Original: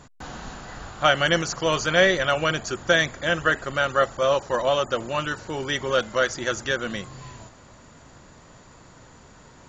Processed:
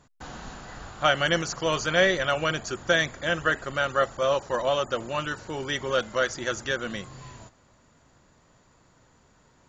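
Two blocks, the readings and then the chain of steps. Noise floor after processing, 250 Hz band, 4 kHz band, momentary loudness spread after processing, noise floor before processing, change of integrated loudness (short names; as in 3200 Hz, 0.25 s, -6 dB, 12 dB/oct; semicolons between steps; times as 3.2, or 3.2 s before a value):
-61 dBFS, -3.0 dB, -3.0 dB, 19 LU, -50 dBFS, -3.0 dB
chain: gate -43 dBFS, range -8 dB; gain -3 dB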